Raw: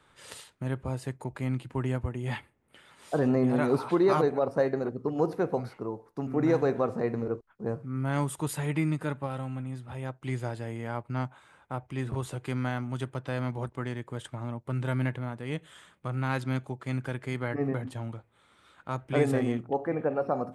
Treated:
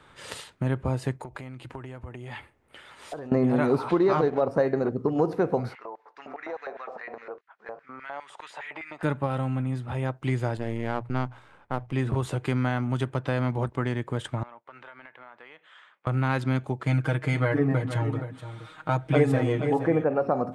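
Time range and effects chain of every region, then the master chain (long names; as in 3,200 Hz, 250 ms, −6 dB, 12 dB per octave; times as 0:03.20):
0:01.19–0:03.32: downward compressor 12 to 1, threshold −39 dBFS + parametric band 180 Hz −7.5 dB 1.6 octaves
0:03.91–0:04.41: mu-law and A-law mismatch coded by A + low-pass filter 5,900 Hz
0:05.75–0:09.03: auto-filter high-pass square 4.9 Hz 710–1,900 Hz + downward compressor 3 to 1, threshold −45 dBFS + high-frequency loss of the air 120 metres
0:10.57–0:11.93: gain on one half-wave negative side −12 dB + mains-hum notches 60/120/180 Hz + one half of a high-frequency compander decoder only
0:14.43–0:16.07: high-pass filter 1,100 Hz + downward compressor 16 to 1, threshold −45 dBFS + head-to-tape spacing loss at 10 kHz 29 dB
0:16.86–0:20.04: comb filter 6.4 ms, depth 96% + single-tap delay 470 ms −13.5 dB
whole clip: high-shelf EQ 7,000 Hz −9.5 dB; downward compressor 2 to 1, threshold −32 dBFS; level +8.5 dB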